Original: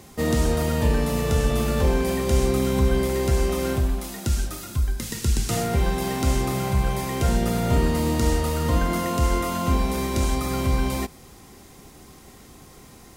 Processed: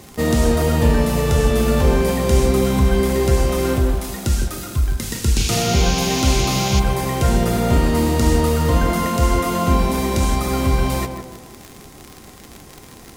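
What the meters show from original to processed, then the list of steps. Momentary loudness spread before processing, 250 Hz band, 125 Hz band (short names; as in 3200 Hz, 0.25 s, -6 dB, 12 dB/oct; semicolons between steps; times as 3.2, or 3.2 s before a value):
5 LU, +5.5 dB, +5.0 dB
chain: painted sound noise, 5.36–6.8, 2200–7100 Hz -31 dBFS; crackle 67/s -29 dBFS; tape echo 0.157 s, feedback 50%, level -4.5 dB, low-pass 1200 Hz; gain +4.5 dB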